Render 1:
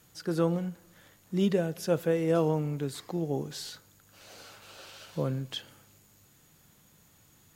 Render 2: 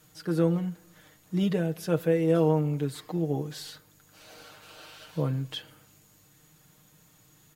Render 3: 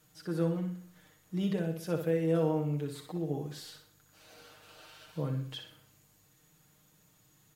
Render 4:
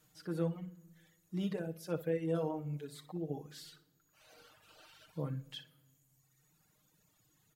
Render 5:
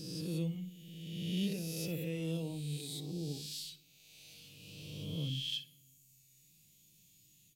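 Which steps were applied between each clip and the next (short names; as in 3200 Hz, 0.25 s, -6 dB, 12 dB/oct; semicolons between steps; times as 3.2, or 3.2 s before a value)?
dynamic EQ 6400 Hz, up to -5 dB, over -59 dBFS, Q 1.3; comb 6.5 ms
flutter echo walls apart 10.5 m, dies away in 0.48 s; gain -6.5 dB
reverb removal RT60 1.7 s; on a send at -24 dB: reverb RT60 1.5 s, pre-delay 4 ms; on the sum: gain -3.5 dB
spectral swells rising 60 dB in 1.72 s; EQ curve 210 Hz 0 dB, 1500 Hz -25 dB, 2500 Hz +5 dB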